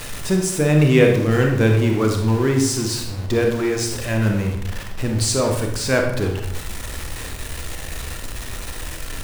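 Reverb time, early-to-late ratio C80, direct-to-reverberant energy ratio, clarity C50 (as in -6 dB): 0.75 s, 7.5 dB, 2.0 dB, 4.0 dB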